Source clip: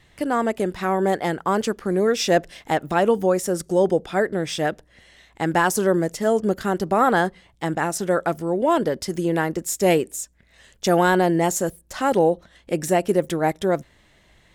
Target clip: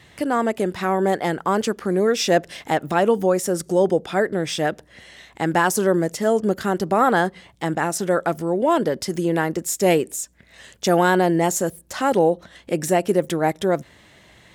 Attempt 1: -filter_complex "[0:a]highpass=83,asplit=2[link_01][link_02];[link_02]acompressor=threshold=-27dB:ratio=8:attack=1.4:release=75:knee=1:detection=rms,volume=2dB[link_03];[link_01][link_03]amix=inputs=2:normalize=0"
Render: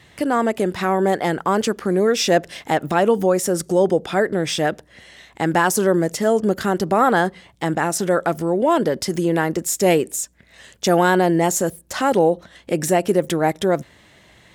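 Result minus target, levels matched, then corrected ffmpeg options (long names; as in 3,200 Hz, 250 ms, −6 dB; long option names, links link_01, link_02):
downward compressor: peak gain reduction −10 dB
-filter_complex "[0:a]highpass=83,asplit=2[link_01][link_02];[link_02]acompressor=threshold=-38.5dB:ratio=8:attack=1.4:release=75:knee=1:detection=rms,volume=2dB[link_03];[link_01][link_03]amix=inputs=2:normalize=0"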